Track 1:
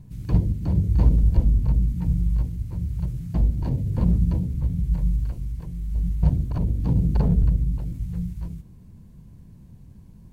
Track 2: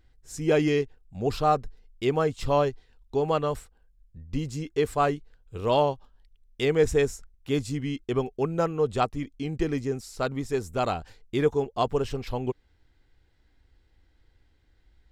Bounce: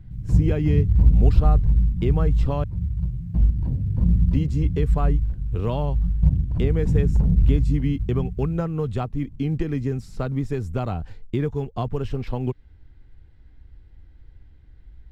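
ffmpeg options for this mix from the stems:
ffmpeg -i stem1.wav -i stem2.wav -filter_complex "[0:a]adynamicequalizer=threshold=0.01:dfrequency=130:dqfactor=6.3:tfrequency=130:tqfactor=6.3:attack=5:release=100:ratio=0.375:range=2:mode=cutabove:tftype=bell,volume=-10.5dB[link_01];[1:a]acrossover=split=180|1300[link_02][link_03][link_04];[link_02]acompressor=threshold=-42dB:ratio=4[link_05];[link_03]acompressor=threshold=-33dB:ratio=4[link_06];[link_04]acompressor=threshold=-44dB:ratio=4[link_07];[link_05][link_06][link_07]amix=inputs=3:normalize=0,volume=3dB,asplit=3[link_08][link_09][link_10];[link_08]atrim=end=2.64,asetpts=PTS-STARTPTS,afade=type=out:start_time=2.636:duration=0.004:curve=hsin[link_11];[link_09]atrim=start=2.64:end=3.97,asetpts=PTS-STARTPTS,volume=0[link_12];[link_10]atrim=start=3.97,asetpts=PTS-STARTPTS,afade=type=in:duration=0.004:curve=hsin[link_13];[link_11][link_12][link_13]concat=n=3:v=0:a=1[link_14];[link_01][link_14]amix=inputs=2:normalize=0,lowshelf=frequency=330:gain=2,acrusher=bits=8:mode=log:mix=0:aa=0.000001,bass=frequency=250:gain=11,treble=frequency=4000:gain=-10" out.wav

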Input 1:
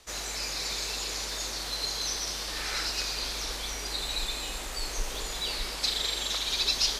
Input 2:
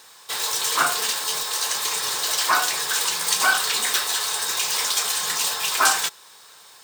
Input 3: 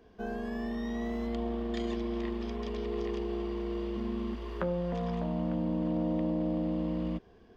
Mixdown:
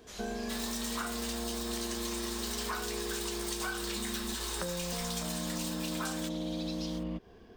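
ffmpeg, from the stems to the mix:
ffmpeg -i stem1.wav -i stem2.wav -i stem3.wav -filter_complex "[0:a]equalizer=frequency=3200:width_type=o:width=0.23:gain=6.5,volume=-11.5dB[link_01];[1:a]dynaudnorm=framelen=170:gausssize=3:maxgain=4dB,adelay=200,volume=-11dB[link_02];[2:a]highshelf=frequency=4300:gain=6,volume=3dB[link_03];[link_01][link_02][link_03]amix=inputs=3:normalize=0,acompressor=threshold=-33dB:ratio=6" out.wav

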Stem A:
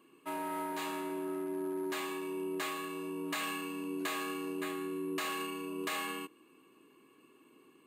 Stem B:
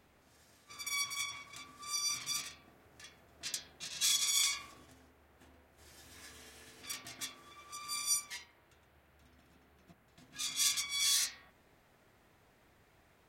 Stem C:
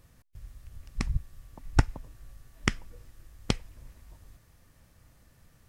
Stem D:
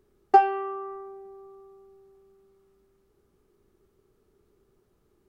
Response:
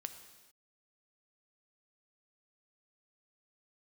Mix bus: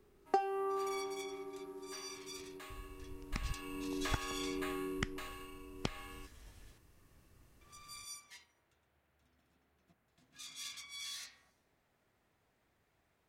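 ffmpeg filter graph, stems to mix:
-filter_complex "[0:a]dynaudnorm=framelen=340:gausssize=3:maxgain=8.5dB,volume=-10dB,afade=type=in:start_time=3.43:duration=0.48:silence=0.223872,afade=type=out:start_time=4.84:duration=0.46:silence=0.266073[link_01];[1:a]volume=-11dB,asplit=3[link_02][link_03][link_04];[link_02]atrim=end=6.78,asetpts=PTS-STARTPTS,afade=type=out:start_time=6.776:duration=0.004:curve=hsin[link_05];[link_03]atrim=start=6.78:end=7.61,asetpts=PTS-STARTPTS,volume=0[link_06];[link_04]atrim=start=7.61,asetpts=PTS-STARTPTS,afade=type=in:duration=0.004:curve=hsin[link_07];[link_05][link_06][link_07]concat=n=3:v=0:a=1,asplit=2[link_08][link_09];[link_09]volume=-17dB[link_10];[2:a]adelay=2350,volume=-6dB[link_11];[3:a]volume=-0.5dB[link_12];[4:a]atrim=start_sample=2205[link_13];[link_10][link_13]afir=irnorm=-1:irlink=0[link_14];[link_01][link_08][link_11][link_12][link_14]amix=inputs=5:normalize=0,acrossover=split=490|4200[link_15][link_16][link_17];[link_15]acompressor=threshold=-36dB:ratio=4[link_18];[link_16]acompressor=threshold=-37dB:ratio=4[link_19];[link_17]acompressor=threshold=-51dB:ratio=4[link_20];[link_18][link_19][link_20]amix=inputs=3:normalize=0"

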